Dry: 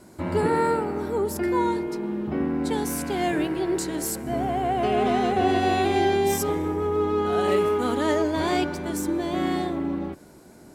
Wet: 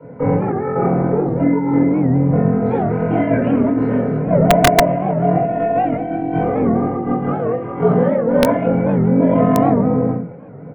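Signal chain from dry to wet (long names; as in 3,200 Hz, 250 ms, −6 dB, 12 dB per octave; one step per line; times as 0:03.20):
compressor whose output falls as the input rises −25 dBFS, ratio −0.5
parametric band 620 Hz +13.5 dB 1 octave
amplitude modulation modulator 45 Hz, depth 75%
comb filter 3.8 ms, depth 54%
far-end echo of a speakerphone 140 ms, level −19 dB
single-sideband voice off tune −70 Hz 190–2,400 Hz
convolution reverb RT60 0.30 s, pre-delay 3 ms, DRR −8.5 dB
wrap-around overflow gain −2.5 dB
low-shelf EQ 180 Hz +8.5 dB
wow of a warped record 78 rpm, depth 160 cents
level −6.5 dB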